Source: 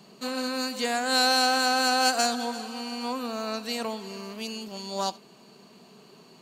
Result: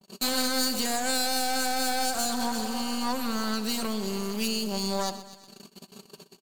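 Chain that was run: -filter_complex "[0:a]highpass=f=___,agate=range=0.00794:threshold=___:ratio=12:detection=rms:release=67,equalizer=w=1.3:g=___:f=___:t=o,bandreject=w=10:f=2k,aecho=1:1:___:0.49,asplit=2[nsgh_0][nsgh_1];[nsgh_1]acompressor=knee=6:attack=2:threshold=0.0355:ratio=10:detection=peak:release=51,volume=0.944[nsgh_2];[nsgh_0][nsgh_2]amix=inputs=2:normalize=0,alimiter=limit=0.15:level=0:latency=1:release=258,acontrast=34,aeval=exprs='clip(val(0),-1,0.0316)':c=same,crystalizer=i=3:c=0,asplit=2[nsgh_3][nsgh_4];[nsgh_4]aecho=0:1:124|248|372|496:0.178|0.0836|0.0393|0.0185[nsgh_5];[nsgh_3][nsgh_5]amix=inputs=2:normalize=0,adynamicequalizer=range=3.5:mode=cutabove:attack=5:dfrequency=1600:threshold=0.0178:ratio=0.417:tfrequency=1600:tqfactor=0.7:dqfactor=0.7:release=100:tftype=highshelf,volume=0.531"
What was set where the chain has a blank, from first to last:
62, 0.00316, 3, 260, 5.2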